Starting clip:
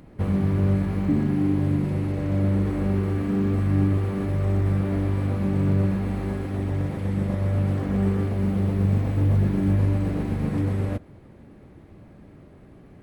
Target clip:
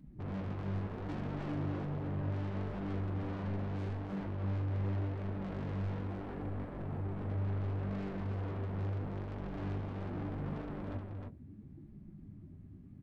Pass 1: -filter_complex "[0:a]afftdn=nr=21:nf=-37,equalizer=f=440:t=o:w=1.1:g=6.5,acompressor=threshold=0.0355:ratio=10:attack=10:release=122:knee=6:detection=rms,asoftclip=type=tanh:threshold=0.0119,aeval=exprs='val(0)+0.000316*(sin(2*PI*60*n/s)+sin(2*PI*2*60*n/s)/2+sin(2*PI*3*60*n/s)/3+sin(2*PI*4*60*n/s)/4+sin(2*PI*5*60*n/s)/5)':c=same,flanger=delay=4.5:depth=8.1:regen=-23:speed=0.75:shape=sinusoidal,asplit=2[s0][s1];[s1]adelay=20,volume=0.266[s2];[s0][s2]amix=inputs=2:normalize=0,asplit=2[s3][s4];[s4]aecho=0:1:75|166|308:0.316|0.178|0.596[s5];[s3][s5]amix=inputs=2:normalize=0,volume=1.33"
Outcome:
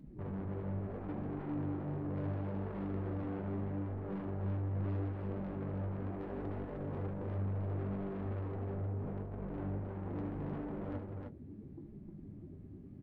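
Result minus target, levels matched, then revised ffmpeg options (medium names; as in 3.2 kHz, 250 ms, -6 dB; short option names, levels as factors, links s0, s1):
compression: peak gain reduction +14.5 dB; 500 Hz band +2.5 dB
-filter_complex "[0:a]afftdn=nr=21:nf=-37,equalizer=f=440:t=o:w=1.1:g=-5,asoftclip=type=tanh:threshold=0.0119,aeval=exprs='val(0)+0.000316*(sin(2*PI*60*n/s)+sin(2*PI*2*60*n/s)/2+sin(2*PI*3*60*n/s)/3+sin(2*PI*4*60*n/s)/4+sin(2*PI*5*60*n/s)/5)':c=same,flanger=delay=4.5:depth=8.1:regen=-23:speed=0.75:shape=sinusoidal,asplit=2[s0][s1];[s1]adelay=20,volume=0.266[s2];[s0][s2]amix=inputs=2:normalize=0,asplit=2[s3][s4];[s4]aecho=0:1:75|166|308:0.316|0.178|0.596[s5];[s3][s5]amix=inputs=2:normalize=0,volume=1.33"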